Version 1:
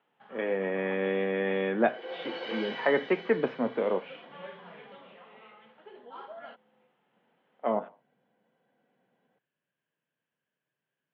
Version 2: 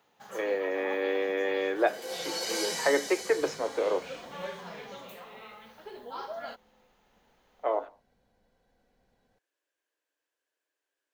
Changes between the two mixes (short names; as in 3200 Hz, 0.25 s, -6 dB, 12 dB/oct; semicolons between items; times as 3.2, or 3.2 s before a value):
speech: add Chebyshev high-pass 280 Hz, order 8; first sound +5.0 dB; master: remove Chebyshev band-pass 140–3200 Hz, order 4